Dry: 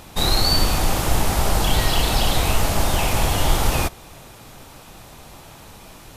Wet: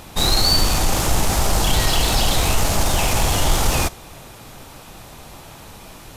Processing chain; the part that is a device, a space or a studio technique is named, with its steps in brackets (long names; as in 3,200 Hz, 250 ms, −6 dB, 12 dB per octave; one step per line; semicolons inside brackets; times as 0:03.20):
dynamic equaliser 6,600 Hz, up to +5 dB, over −37 dBFS, Q 1.1
parallel distortion (in parallel at −4.5 dB: hard clipping −21 dBFS, distortion −7 dB)
on the sum: level −1.5 dB